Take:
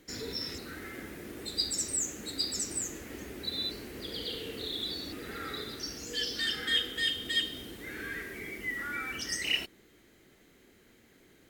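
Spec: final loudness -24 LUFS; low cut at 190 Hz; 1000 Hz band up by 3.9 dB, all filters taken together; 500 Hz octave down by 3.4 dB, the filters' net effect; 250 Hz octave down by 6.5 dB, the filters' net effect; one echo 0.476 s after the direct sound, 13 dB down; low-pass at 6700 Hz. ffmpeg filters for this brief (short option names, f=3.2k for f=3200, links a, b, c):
-af "highpass=190,lowpass=6.7k,equalizer=f=250:t=o:g=-6.5,equalizer=f=500:t=o:g=-3,equalizer=f=1k:t=o:g=7,aecho=1:1:476:0.224,volume=10dB"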